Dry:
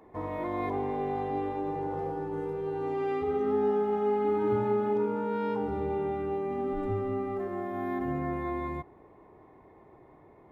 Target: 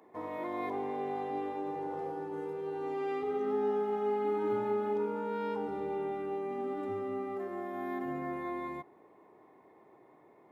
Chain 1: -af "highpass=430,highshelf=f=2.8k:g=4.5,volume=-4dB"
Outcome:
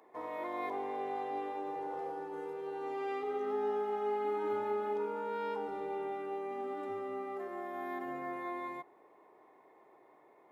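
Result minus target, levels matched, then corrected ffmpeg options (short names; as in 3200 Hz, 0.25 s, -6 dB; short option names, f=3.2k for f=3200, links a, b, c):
250 Hz band -3.5 dB
-af "highpass=210,highshelf=f=2.8k:g=4.5,volume=-4dB"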